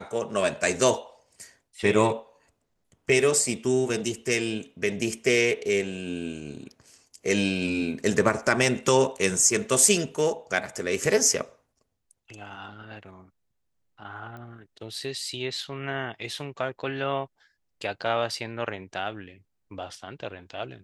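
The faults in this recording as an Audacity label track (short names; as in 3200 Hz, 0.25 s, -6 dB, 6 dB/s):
14.370000	14.370000	pop -30 dBFS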